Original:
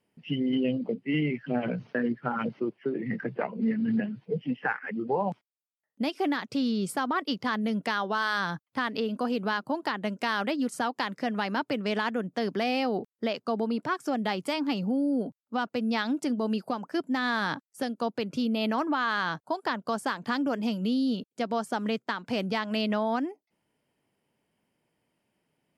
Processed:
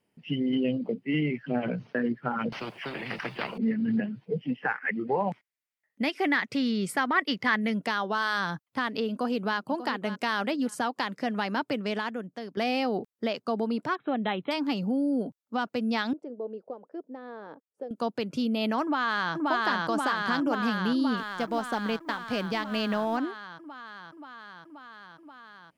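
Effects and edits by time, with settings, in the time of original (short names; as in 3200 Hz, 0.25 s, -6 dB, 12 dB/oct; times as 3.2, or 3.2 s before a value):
2.52–3.58 spectral compressor 4:1
4.85–7.74 bell 2000 Hz +12 dB 0.66 oct
9.09–9.56 echo throw 0.59 s, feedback 20%, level -12 dB
11.72–12.57 fade out, to -13.5 dB
13.95–14.51 brick-wall FIR low-pass 4100 Hz
16.13–17.91 band-pass 480 Hz, Q 3.8
18.82–19.34 echo throw 0.53 s, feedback 80%, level -0.5 dB
21.17–23.17 G.711 law mismatch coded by A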